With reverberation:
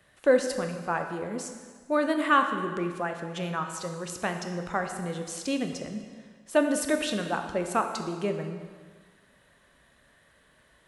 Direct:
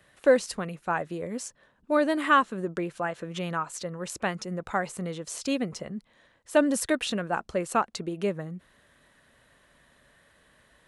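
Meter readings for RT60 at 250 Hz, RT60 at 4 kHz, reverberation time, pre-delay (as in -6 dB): 1.5 s, 1.5 s, 1.6 s, 18 ms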